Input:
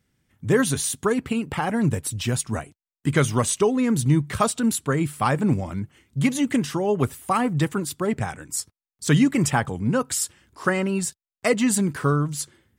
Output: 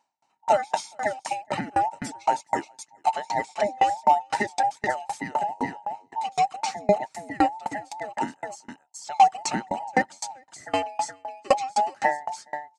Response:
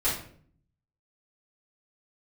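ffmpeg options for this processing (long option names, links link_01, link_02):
-filter_complex "[0:a]afftfilt=real='real(if(between(b,1,1008),(2*floor((b-1)/48)+1)*48-b,b),0)':imag='imag(if(between(b,1,1008),(2*floor((b-1)/48)+1)*48-b,b),0)*if(between(b,1,1008),-1,1)':win_size=2048:overlap=0.75,asplit=2[link_01][link_02];[link_02]aecho=0:1:419:0.237[link_03];[link_01][link_03]amix=inputs=2:normalize=0,acrossover=split=4800[link_04][link_05];[link_05]acompressor=threshold=-32dB:ratio=4:attack=1:release=60[link_06];[link_04][link_06]amix=inputs=2:normalize=0,highpass=frequency=110:width=0.5412,highpass=frequency=110:width=1.3066,equalizer=frequency=280:width_type=q:width=4:gain=4,equalizer=frequency=500:width_type=q:width=4:gain=-8,equalizer=frequency=1000:width_type=q:width=4:gain=-5,equalizer=frequency=1500:width_type=q:width=4:gain=-6,equalizer=frequency=3300:width_type=q:width=4:gain=-9,lowpass=frequency=7400:width=0.5412,lowpass=frequency=7400:width=1.3066,aeval=exprs='val(0)*pow(10,-31*if(lt(mod(3.9*n/s,1),2*abs(3.9)/1000),1-mod(3.9*n/s,1)/(2*abs(3.9)/1000),(mod(3.9*n/s,1)-2*abs(3.9)/1000)/(1-2*abs(3.9)/1000))/20)':channel_layout=same,volume=8dB"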